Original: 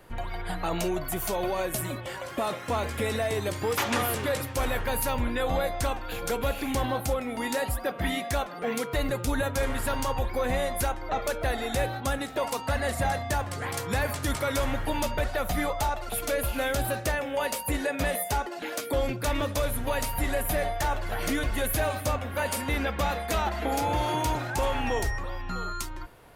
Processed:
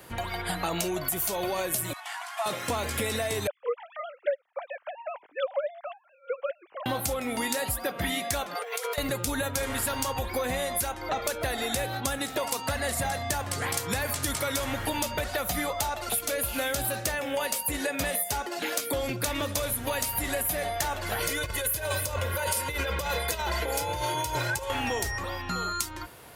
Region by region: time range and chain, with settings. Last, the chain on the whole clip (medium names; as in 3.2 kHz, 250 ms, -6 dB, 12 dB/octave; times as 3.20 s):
1.93–2.46 s: CVSD coder 64 kbps + brick-wall FIR high-pass 640 Hz + treble shelf 2.6 kHz -10.5 dB
3.47–6.86 s: formants replaced by sine waves + peaking EQ 770 Hz +7 dB 2 oct + upward expansion 2.5:1, over -33 dBFS
8.55–8.98 s: brick-wall FIR high-pass 400 Hz + compressor with a negative ratio -38 dBFS
21.20–24.70 s: comb 2 ms, depth 75% + compressor with a negative ratio -29 dBFS
whole clip: high-pass 64 Hz; treble shelf 3.1 kHz +9.5 dB; compression, threshold -29 dBFS; trim +3 dB